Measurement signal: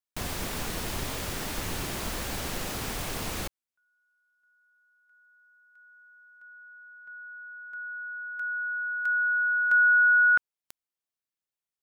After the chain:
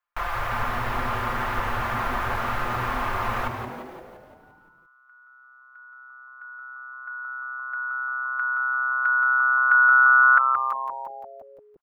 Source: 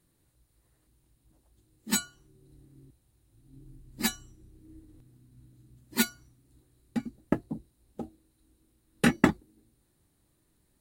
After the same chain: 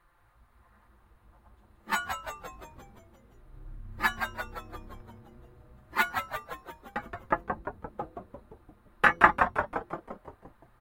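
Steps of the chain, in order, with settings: peaking EQ 270 Hz -12.5 dB 2.4 oct; comb 5.8 ms, depth 66%; de-hum 84.41 Hz, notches 6; in parallel at +1 dB: compression, threshold -46 dBFS; on the sum: FFT filter 100 Hz 0 dB, 150 Hz -11 dB, 1.2 kHz +12 dB, 4.5 kHz -15 dB, 8.4 kHz -22 dB, 14 kHz -16 dB; on a send: frequency-shifting echo 173 ms, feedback 60%, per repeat -130 Hz, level -6 dB; on the sum: trim +2.5 dB

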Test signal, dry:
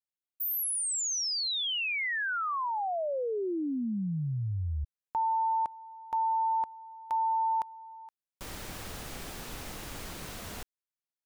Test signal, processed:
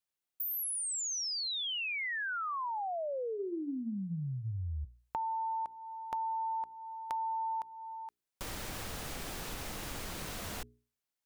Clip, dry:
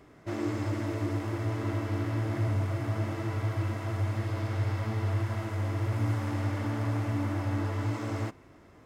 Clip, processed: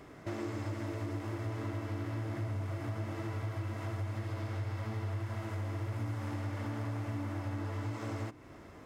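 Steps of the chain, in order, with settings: hum notches 60/120/180/240/300/360/420 Hz; compression 3:1, threshold -42 dBFS; trim +4 dB

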